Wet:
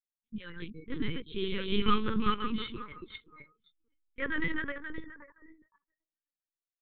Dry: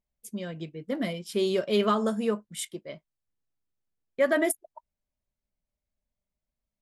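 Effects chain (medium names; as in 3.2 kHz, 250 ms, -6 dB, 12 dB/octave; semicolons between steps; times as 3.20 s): backward echo that repeats 263 ms, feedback 43%, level -1.5 dB; peaking EQ 430 Hz -12 dB 0.49 oct; spectral noise reduction 29 dB; LPC vocoder at 8 kHz pitch kept; Butterworth band-stop 680 Hz, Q 1.1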